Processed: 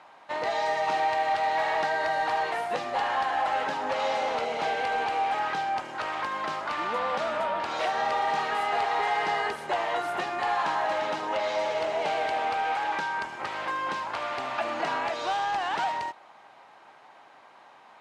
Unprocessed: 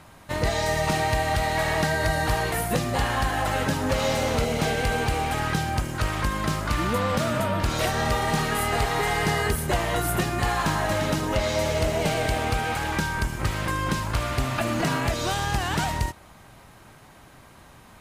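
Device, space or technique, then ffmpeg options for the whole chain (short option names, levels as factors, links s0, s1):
intercom: -af "highpass=480,lowpass=3800,equalizer=f=830:t=o:w=0.56:g=7,asoftclip=type=tanh:threshold=0.178,volume=0.75"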